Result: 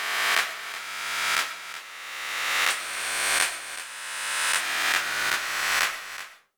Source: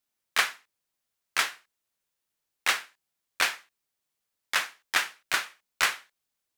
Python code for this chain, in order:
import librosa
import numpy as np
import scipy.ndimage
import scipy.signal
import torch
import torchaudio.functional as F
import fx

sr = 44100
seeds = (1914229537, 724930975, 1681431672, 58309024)

y = fx.spec_swells(x, sr, rise_s=2.29)
y = fx.peak_eq(y, sr, hz=8900.0, db=13.0, octaves=0.38, at=(2.7, 4.61))
y = y + 10.0 ** (-13.5 / 20.0) * np.pad(y, (int(374 * sr / 1000.0), 0))[:len(y)]
y = fx.rev_freeverb(y, sr, rt60_s=0.43, hf_ratio=0.35, predelay_ms=75, drr_db=12.5)
y = F.gain(torch.from_numpy(y), -3.5).numpy()